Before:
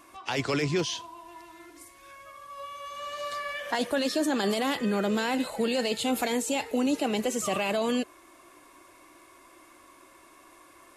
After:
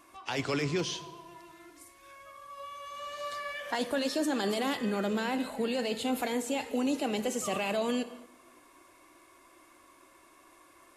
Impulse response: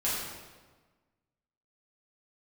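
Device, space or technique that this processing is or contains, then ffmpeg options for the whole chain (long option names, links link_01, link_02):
keyed gated reverb: -filter_complex "[0:a]asplit=3[link_01][link_02][link_03];[1:a]atrim=start_sample=2205[link_04];[link_02][link_04]afir=irnorm=-1:irlink=0[link_05];[link_03]apad=whole_len=483507[link_06];[link_05][link_06]sidechaingate=range=-33dB:threshold=-52dB:ratio=16:detection=peak,volume=-19.5dB[link_07];[link_01][link_07]amix=inputs=2:normalize=0,asettb=1/sr,asplit=3[link_08][link_09][link_10];[link_08]atrim=end=5.134[link_11];[link_09]atrim=start=5.13:end=6.61,asetpts=PTS-STARTPTS,afade=type=in:duration=0.004:curve=qsin,afade=type=out:start_time=1.476:duration=0.004:curve=qsin,equalizer=frequency=6800:width_type=o:width=2:gain=-4[link_12];[link_10]atrim=start=6.606[link_13];[link_11][link_12]acrossfade=duration=0.004:curve1=hsin:curve2=qsin[link_14];[link_14][link_13]acrossfade=duration=0.004:curve1=qsin:curve2=hsin,volume=-4.5dB"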